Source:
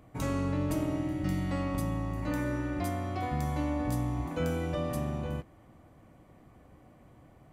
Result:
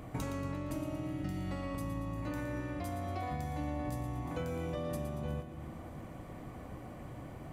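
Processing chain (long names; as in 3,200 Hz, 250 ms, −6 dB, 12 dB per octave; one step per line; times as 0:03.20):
downward compressor 10 to 1, threshold −45 dBFS, peak gain reduction 19 dB
on a send: echo with a time of its own for lows and highs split 420 Hz, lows 284 ms, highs 116 ms, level −9 dB
on the sum: level +9.5 dB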